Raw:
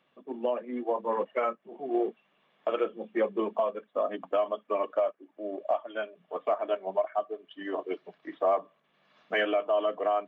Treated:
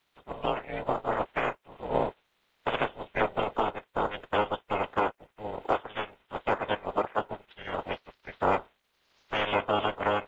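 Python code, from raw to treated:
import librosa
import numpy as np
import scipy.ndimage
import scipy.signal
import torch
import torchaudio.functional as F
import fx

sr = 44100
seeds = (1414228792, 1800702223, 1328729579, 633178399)

y = fx.spec_clip(x, sr, under_db=25)
y = y * np.sin(2.0 * np.pi * 210.0 * np.arange(len(y)) / sr)
y = fx.dynamic_eq(y, sr, hz=570.0, q=0.98, threshold_db=-45.0, ratio=4.0, max_db=6)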